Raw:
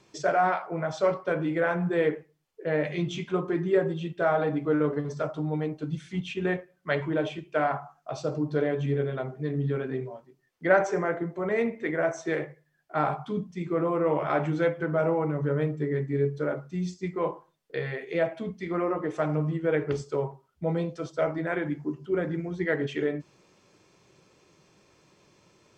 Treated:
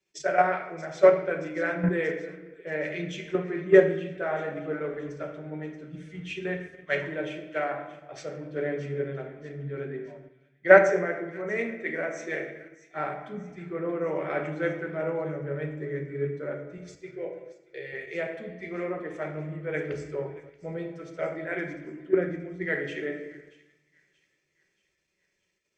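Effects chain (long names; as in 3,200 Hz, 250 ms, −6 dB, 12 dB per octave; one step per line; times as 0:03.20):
0:16.77–0:17.93: phaser with its sweep stopped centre 480 Hz, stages 4
rectangular room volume 1,500 cubic metres, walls mixed, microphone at 1.1 metres
in parallel at +0.5 dB: output level in coarse steps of 20 dB
on the sum: octave-band graphic EQ 125/250/500/1,000/2,000/4,000 Hz −7/−3/+3/−8/+8/−5 dB
on a send: delay with a high-pass on its return 630 ms, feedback 62%, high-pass 2,600 Hz, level −9.5 dB
on the sum: multiband upward and downward expander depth 70%
level −6 dB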